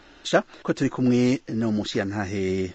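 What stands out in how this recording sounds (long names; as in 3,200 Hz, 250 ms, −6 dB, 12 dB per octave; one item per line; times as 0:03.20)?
Ogg Vorbis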